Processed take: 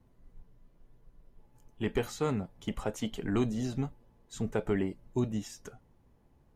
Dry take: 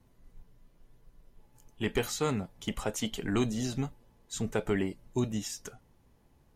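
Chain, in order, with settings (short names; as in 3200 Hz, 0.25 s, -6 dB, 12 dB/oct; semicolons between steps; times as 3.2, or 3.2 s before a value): high shelf 2100 Hz -9 dB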